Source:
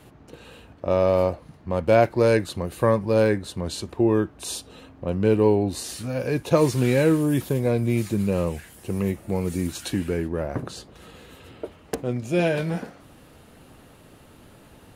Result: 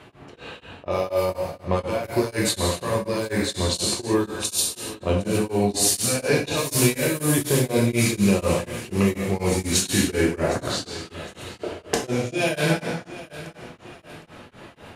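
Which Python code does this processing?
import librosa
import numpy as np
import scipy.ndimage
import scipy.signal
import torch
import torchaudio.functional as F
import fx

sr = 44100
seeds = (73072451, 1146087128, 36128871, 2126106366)

y = fx.riaa(x, sr, side='recording')
y = fx.env_lowpass(y, sr, base_hz=2400.0, full_db=-18.5)
y = fx.low_shelf(y, sr, hz=130.0, db=9.5)
y = fx.over_compress(y, sr, threshold_db=-26.0, ratio=-1.0)
y = fx.echo_feedback(y, sr, ms=761, feedback_pct=41, wet_db=-16.5)
y = fx.rev_gated(y, sr, seeds[0], gate_ms=360, shape='falling', drr_db=-2.5)
y = y * np.abs(np.cos(np.pi * 4.1 * np.arange(len(y)) / sr))
y = y * 10.0 ** (3.5 / 20.0)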